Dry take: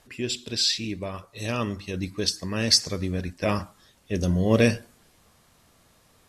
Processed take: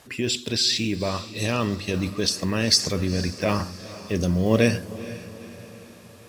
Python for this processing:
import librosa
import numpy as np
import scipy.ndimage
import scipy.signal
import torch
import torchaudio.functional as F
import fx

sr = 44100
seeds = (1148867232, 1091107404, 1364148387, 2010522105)

p1 = fx.block_float(x, sr, bits=7)
p2 = scipy.signal.sosfilt(scipy.signal.butter(2, 73.0, 'highpass', fs=sr, output='sos'), p1)
p3 = fx.over_compress(p2, sr, threshold_db=-32.0, ratio=-1.0)
p4 = p2 + F.gain(torch.from_numpy(p3), -2.5).numpy()
y = fx.echo_diffused(p4, sr, ms=468, feedback_pct=51, wet_db=-15.5)